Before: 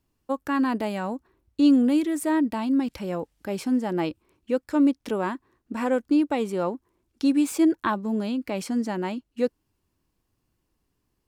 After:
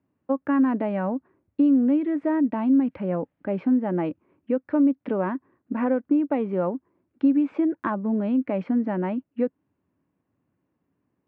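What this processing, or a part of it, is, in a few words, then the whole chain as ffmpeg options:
bass amplifier: -af "acompressor=threshold=0.0708:ratio=5,highpass=f=89:w=0.5412,highpass=f=89:w=1.3066,equalizer=f=180:t=q:w=4:g=5,equalizer=f=270:t=q:w=4:g=7,equalizer=f=580:t=q:w=4:g=6,lowpass=f=2200:w=0.5412,lowpass=f=2200:w=1.3066"

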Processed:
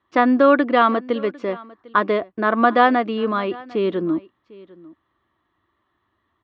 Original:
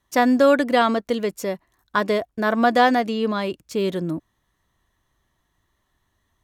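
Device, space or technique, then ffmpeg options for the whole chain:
guitar cabinet: -af "highpass=97,equalizer=f=150:t=q:w=4:g=-8,equalizer=f=330:t=q:w=4:g=8,equalizer=f=1200:t=q:w=4:g=9,lowpass=f=3400:w=0.5412,lowpass=f=3400:w=1.3066,aecho=1:1:750:0.0794"

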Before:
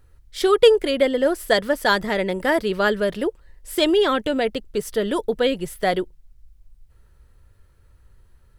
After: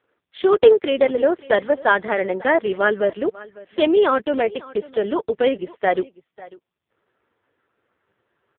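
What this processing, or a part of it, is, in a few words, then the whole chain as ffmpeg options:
satellite phone: -af "highpass=310,lowpass=3400,aecho=1:1:548:0.0944,volume=1.5" -ar 8000 -c:a libopencore_amrnb -b:a 4750

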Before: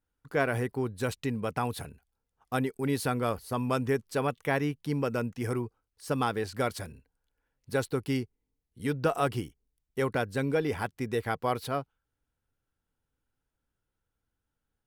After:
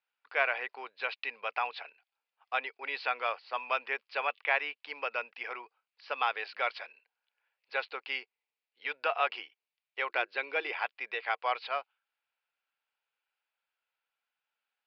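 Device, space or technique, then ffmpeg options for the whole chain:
musical greeting card: -filter_complex "[0:a]acrossover=split=4700[s0][s1];[s1]acompressor=threshold=0.00178:ratio=4:attack=1:release=60[s2];[s0][s2]amix=inputs=2:normalize=0,aresample=11025,aresample=44100,highpass=f=650:w=0.5412,highpass=f=650:w=1.3066,equalizer=f=2500:t=o:w=0.54:g=11,asettb=1/sr,asplit=3[s3][s4][s5];[s3]atrim=end=10.094[s6];[s4]atrim=start=10.09:end=10.72,asetpts=PTS-STARTPTS,afade=t=in:d=0.004:c=qsin,afade=t=out:st=0.626:d=0.004:c=qsin,equalizer=f=350:t=o:w=0.25:g=14.5[s7];[s5]atrim=start=10.716[s8];[s6][s7]acrossfade=d=0.004:c1=hsin:c2=qsin[s9];[s9][s8]acrossfade=d=0.004:c1=qsin:c2=hsin"

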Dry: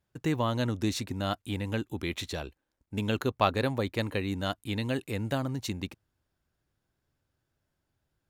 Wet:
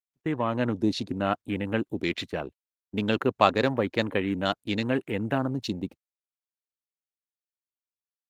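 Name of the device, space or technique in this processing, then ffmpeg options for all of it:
video call: -filter_complex "[0:a]asettb=1/sr,asplit=3[s0][s1][s2];[s0]atrim=end=4.914[s3];[s1]atrim=start=4.91:end=5.44,asetpts=PTS-STARTPTS,afade=t=in:d=0.004:c=qsin,afade=t=out:st=0.526:d=0.004:c=qsin,bandreject=f=550:w=15[s4];[s2]atrim=start=5.436[s5];[s3][s4]acrossfade=d=0.004:c1=hsin:c2=qsin[s6];[s6][s5]acrossfade=d=0.004:c1=qsin:c2=hsin,afwtdn=0.00891,highpass=160,dynaudnorm=f=150:g=7:m=2,agate=range=0.0224:threshold=0.0112:ratio=16:detection=peak" -ar 48000 -c:a libopus -b:a 32k

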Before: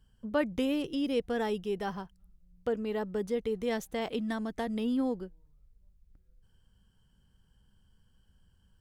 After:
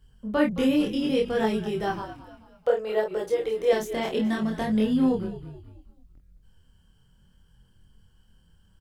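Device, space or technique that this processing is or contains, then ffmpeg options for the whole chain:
double-tracked vocal: -filter_complex "[0:a]asplit=2[s0][s1];[s1]adelay=23,volume=0.668[s2];[s0][s2]amix=inputs=2:normalize=0,flanger=delay=22.5:depth=7.4:speed=0.64,asettb=1/sr,asplit=3[s3][s4][s5];[s3]atrim=end=2.024[s6];[s4]atrim=start=2.02:end=3.73,asetpts=PTS-STARTPTS,afade=t=in:d=0.004:c=qsin,afade=t=out:st=1.706:d=0.004:c=qsin,lowshelf=f=380:t=q:w=3:g=-11[s7];[s5]atrim=start=3.726[s8];[s6][s7]acrossfade=d=0.004:c1=hsin:c2=qsin[s9];[s9][s8]acrossfade=d=0.004:c1=qsin:c2=hsin,asplit=5[s10][s11][s12][s13][s14];[s11]adelay=217,afreqshift=-54,volume=0.2[s15];[s12]adelay=434,afreqshift=-108,volume=0.0902[s16];[s13]adelay=651,afreqshift=-162,volume=0.0403[s17];[s14]adelay=868,afreqshift=-216,volume=0.0182[s18];[s10][s15][s16][s17][s18]amix=inputs=5:normalize=0,volume=2.37"

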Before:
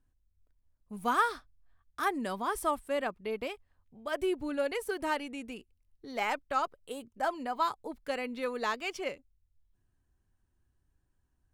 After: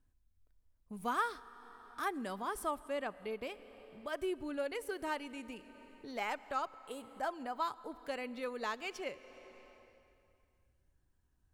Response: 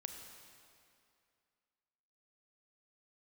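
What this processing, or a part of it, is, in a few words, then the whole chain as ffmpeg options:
compressed reverb return: -filter_complex "[0:a]asettb=1/sr,asplit=3[s0][s1][s2];[s0]atrim=end=2.804[s3];[s1]atrim=start=2.8:end=3.22,asetpts=PTS-STARTPTS,afade=t=in:d=0.004:c=qsin,afade=t=out:st=0.416:d=0.004:c=qsin,lowpass=11000[s4];[s2]atrim=start=3.216[s5];[s3][s4]acrossfade=d=0.004:c1=hsin:c2=qsin[s6];[s6][s5]acrossfade=d=0.004:c1=qsin:c2=hsin,asplit=2[s7][s8];[1:a]atrim=start_sample=2205[s9];[s8][s9]afir=irnorm=-1:irlink=0,acompressor=threshold=0.00355:ratio=8,volume=1.88[s10];[s7][s10]amix=inputs=2:normalize=0,volume=0.422"

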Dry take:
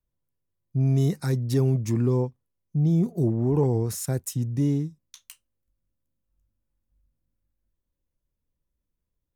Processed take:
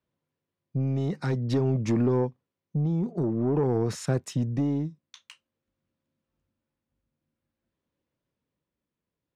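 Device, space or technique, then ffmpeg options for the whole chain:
AM radio: -af "highpass=160,lowpass=3500,acompressor=threshold=0.0562:ratio=10,asoftclip=type=tanh:threshold=0.0631,tremolo=f=0.5:d=0.37,volume=2.51"

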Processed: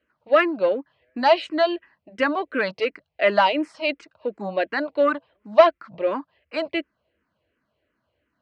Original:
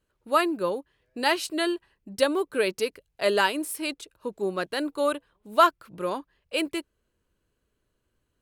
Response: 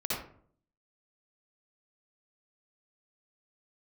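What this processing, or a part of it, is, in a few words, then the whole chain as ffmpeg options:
barber-pole phaser into a guitar amplifier: -filter_complex "[0:a]asplit=2[s0][s1];[s1]afreqshift=-2.8[s2];[s0][s2]amix=inputs=2:normalize=1,asoftclip=type=tanh:threshold=0.112,highpass=62,highpass=82,equalizer=f=110:t=q:w=4:g=-9,equalizer=f=170:t=q:w=4:g=-5,equalizer=f=400:t=q:w=4:g=-8,equalizer=f=640:t=q:w=4:g=8,equalizer=f=2000:t=q:w=4:g=4,equalizer=f=3600:t=q:w=4:g=-6,lowpass=f=4100:w=0.5412,lowpass=f=4100:w=1.3066,volume=2.66"

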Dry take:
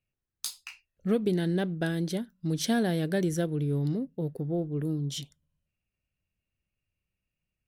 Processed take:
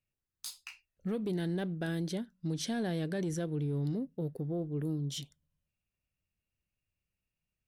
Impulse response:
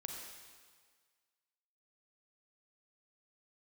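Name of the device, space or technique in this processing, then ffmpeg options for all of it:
soft clipper into limiter: -filter_complex "[0:a]asettb=1/sr,asplit=3[s0][s1][s2];[s0]atrim=end=2.104[s3];[s1]atrim=start=2.1:end=3.84,asetpts=PTS-STARTPTS,afade=t=in:d=0.004:c=qsin,afade=t=out:st=1.736:d=0.004:c=qsin,lowpass=9400[s4];[s2]atrim=start=3.836[s5];[s3][s4]acrossfade=d=0.004:c1=hsin:c2=qsin[s6];[s6][s5]acrossfade=d=0.004:c1=qsin:c2=hsin,asoftclip=type=tanh:threshold=0.15,alimiter=limit=0.0631:level=0:latency=1:release=26,volume=0.668"

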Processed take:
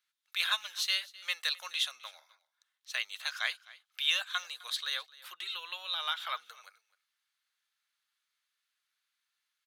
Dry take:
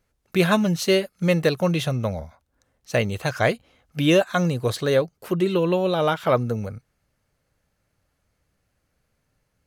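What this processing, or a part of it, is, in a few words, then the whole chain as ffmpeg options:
headphones lying on a table: -filter_complex "[0:a]asettb=1/sr,asplit=3[s0][s1][s2];[s0]atrim=end=1.404[s3];[s1]atrim=start=1.4:end=1.99,asetpts=PTS-STARTPTS,afade=t=in:d=0.004:c=qsin,afade=t=out:st=0.586:d=0.004:c=qsin,equalizer=f=125:t=o:w=1:g=4,equalizer=f=250:t=o:w=1:g=4,equalizer=f=8000:t=o:w=1:g=5[s4];[s2]atrim=start=1.986[s5];[s3][s4]acrossfade=d=0.004:c1=hsin:c2=qsin[s6];[s6][s5]acrossfade=d=0.004:c1=qsin:c2=hsin,highpass=f=1200:w=0.5412,highpass=f=1200:w=1.3066,equalizer=f=3600:t=o:w=0.53:g=11,aecho=1:1:258:0.0891,volume=0.398"

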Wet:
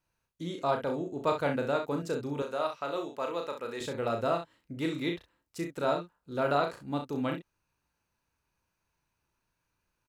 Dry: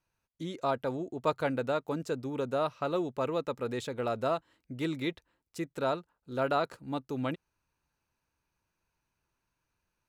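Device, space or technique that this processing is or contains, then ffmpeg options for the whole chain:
slapback doubling: -filter_complex "[0:a]asplit=3[s0][s1][s2];[s1]adelay=35,volume=0.562[s3];[s2]adelay=64,volume=0.355[s4];[s0][s3][s4]amix=inputs=3:normalize=0,asettb=1/sr,asplit=3[s5][s6][s7];[s5]atrim=end=2.424[s8];[s6]atrim=start=2.42:end=3.81,asetpts=PTS-STARTPTS,afade=t=in:d=0.004:c=qsin,afade=t=out:st=1.386:d=0.004:c=qsin,highpass=f=660:p=1[s9];[s7]atrim=start=3.806[s10];[s8][s9]acrossfade=d=0.004:c1=hsin:c2=qsin[s11];[s11][s10]acrossfade=d=0.004:c1=qsin:c2=hsin"

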